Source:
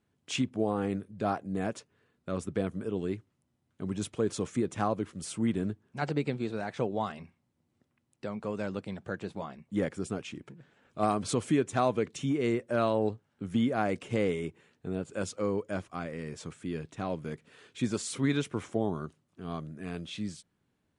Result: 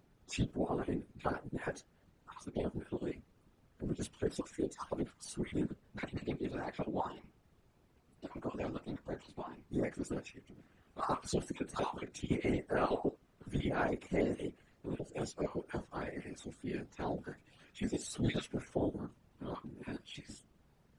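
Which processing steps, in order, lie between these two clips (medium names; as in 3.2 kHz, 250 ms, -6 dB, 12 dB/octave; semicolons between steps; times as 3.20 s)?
random holes in the spectrogram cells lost 29%; added noise brown -56 dBFS; high-pass 48 Hz; on a send at -10.5 dB: reverberation, pre-delay 3 ms; on the sum: formant-preserving pitch shift +5.5 st; whisper effect; trim -4.5 dB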